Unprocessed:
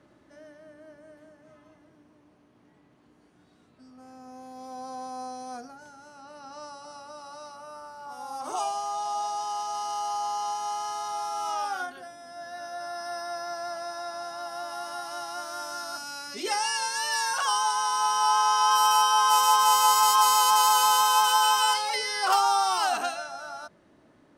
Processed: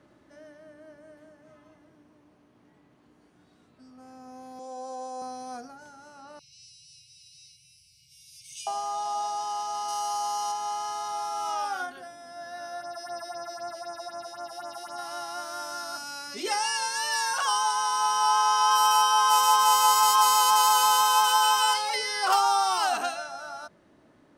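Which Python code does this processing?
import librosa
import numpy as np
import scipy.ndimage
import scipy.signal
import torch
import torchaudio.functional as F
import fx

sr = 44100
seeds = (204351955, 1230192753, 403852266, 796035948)

y = fx.cabinet(x, sr, low_hz=290.0, low_slope=12, high_hz=9400.0, hz=(510.0, 1300.0, 2100.0, 4600.0, 7600.0), db=(6, -9, -8, -5, 10), at=(4.59, 5.22))
y = fx.brickwall_bandstop(y, sr, low_hz=160.0, high_hz=2100.0, at=(6.39, 8.67))
y = fx.high_shelf(y, sr, hz=6600.0, db=10.0, at=(9.88, 10.52))
y = fx.phaser_stages(y, sr, stages=4, low_hz=160.0, high_hz=3900.0, hz=3.9, feedback_pct=25, at=(12.8, 14.97), fade=0.02)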